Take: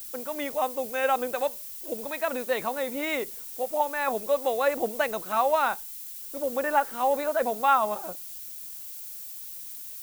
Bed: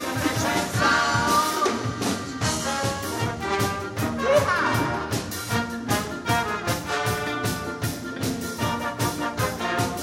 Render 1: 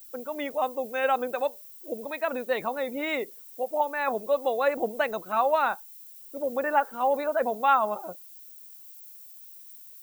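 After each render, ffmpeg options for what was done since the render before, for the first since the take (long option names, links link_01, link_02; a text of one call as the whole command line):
ffmpeg -i in.wav -af "afftdn=noise_reduction=12:noise_floor=-40" out.wav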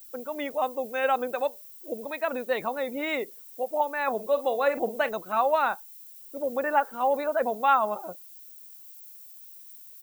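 ffmpeg -i in.wav -filter_complex "[0:a]asplit=3[link_01][link_02][link_03];[link_01]afade=type=out:start_time=4.18:duration=0.02[link_04];[link_02]asplit=2[link_05][link_06];[link_06]adelay=46,volume=-13.5dB[link_07];[link_05][link_07]amix=inputs=2:normalize=0,afade=type=in:start_time=4.18:duration=0.02,afade=type=out:start_time=5.08:duration=0.02[link_08];[link_03]afade=type=in:start_time=5.08:duration=0.02[link_09];[link_04][link_08][link_09]amix=inputs=3:normalize=0" out.wav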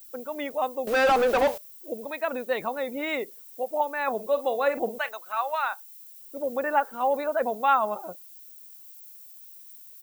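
ffmpeg -i in.wav -filter_complex "[0:a]asettb=1/sr,asplit=3[link_01][link_02][link_03];[link_01]atrim=end=0.874[link_04];[link_02]atrim=start=0.87:end=1.58,asetpts=PTS-STARTPTS,afade=type=in:duration=0.004:curve=qsin,afade=type=out:start_time=0.706:duration=0.004:curve=qsin,asplit=2[link_05][link_06];[link_06]highpass=frequency=720:poles=1,volume=31dB,asoftclip=type=tanh:threshold=-13.5dB[link_07];[link_05][link_07]amix=inputs=2:normalize=0,lowpass=frequency=1900:poles=1,volume=-6dB[link_08];[link_03]atrim=start=1.576[link_09];[link_04][link_08]acrossfade=duration=0.004:curve1=hsin:curve2=qsin[link_10];[link_10][link_09]acrossfade=duration=0.004:curve1=qsin:curve2=hsin,asettb=1/sr,asplit=3[link_11][link_12][link_13];[link_11]atrim=end=4.984[link_14];[link_12]atrim=start=4.98:end=6.2,asetpts=PTS-STARTPTS,afade=type=in:duration=0.004:curve=qsin,afade=type=out:start_time=1.216:duration=0.004:curve=qsin,highpass=970[link_15];[link_13]atrim=start=6.196[link_16];[link_14][link_15]acrossfade=duration=0.004:curve1=hsin:curve2=qsin[link_17];[link_17][link_16]acrossfade=duration=0.004:curve1=qsin:curve2=hsin" out.wav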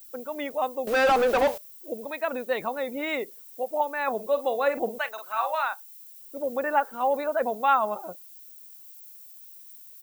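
ffmpeg -i in.wav -filter_complex "[0:a]asettb=1/sr,asplit=3[link_01][link_02][link_03];[link_01]atrim=end=5.134[link_04];[link_02]atrim=start=5.13:end=5.63,asetpts=PTS-STARTPTS,afade=type=in:duration=0.004:curve=qsin,afade=type=out:start_time=0.496:duration=0.004:curve=qsin,asplit=2[link_05][link_06];[link_06]adelay=46,volume=-5dB[link_07];[link_05][link_07]amix=inputs=2:normalize=0,atrim=end_sample=22050[link_08];[link_03]atrim=start=5.626[link_09];[link_04][link_08]acrossfade=duration=0.004:curve1=hsin:curve2=qsin[link_10];[link_10][link_09]acrossfade=duration=0.004:curve1=qsin:curve2=hsin" out.wav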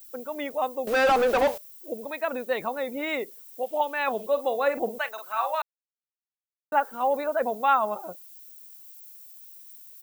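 ffmpeg -i in.wav -filter_complex "[0:a]asettb=1/sr,asplit=3[link_01][link_02][link_03];[link_01]atrim=end=3.634[link_04];[link_02]atrim=start=3.63:end=4.27,asetpts=PTS-STARTPTS,afade=type=in:duration=0.004:curve=qsin,afade=type=out:start_time=0.636:duration=0.004:curve=qsin,equalizer=frequency=3100:width=2.5:gain=12.5[link_05];[link_03]atrim=start=4.266[link_06];[link_04][link_05]acrossfade=duration=0.004:curve1=hsin:curve2=qsin[link_07];[link_07][link_06]acrossfade=duration=0.004:curve1=qsin:curve2=hsin,asplit=3[link_08][link_09][link_10];[link_08]atrim=end=5.62,asetpts=PTS-STARTPTS,afade=type=out:start_time=5.616:duration=0.004:curve=hsin[link_11];[link_09]atrim=start=5.62:end=6.72,asetpts=PTS-STARTPTS,volume=0[link_12];[link_10]atrim=start=6.72,asetpts=PTS-STARTPTS,afade=type=in:duration=0.004:curve=hsin[link_13];[link_11][link_12][link_13]concat=n=3:v=0:a=1" out.wav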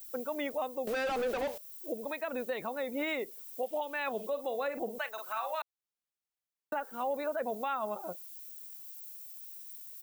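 ffmpeg -i in.wav -filter_complex "[0:a]acrossover=split=720|1300[link_01][link_02][link_03];[link_02]acompressor=threshold=-39dB:ratio=6[link_04];[link_01][link_04][link_03]amix=inputs=3:normalize=0,alimiter=level_in=1.5dB:limit=-24dB:level=0:latency=1:release=289,volume=-1.5dB" out.wav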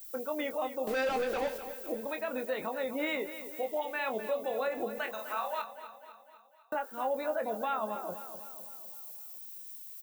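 ffmpeg -i in.wav -filter_complex "[0:a]asplit=2[link_01][link_02];[link_02]adelay=23,volume=-7.5dB[link_03];[link_01][link_03]amix=inputs=2:normalize=0,asplit=2[link_04][link_05];[link_05]aecho=0:1:252|504|756|1008|1260|1512:0.251|0.136|0.0732|0.0396|0.0214|0.0115[link_06];[link_04][link_06]amix=inputs=2:normalize=0" out.wav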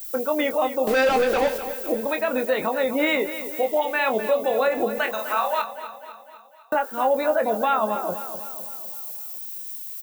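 ffmpeg -i in.wav -af "volume=11.5dB" out.wav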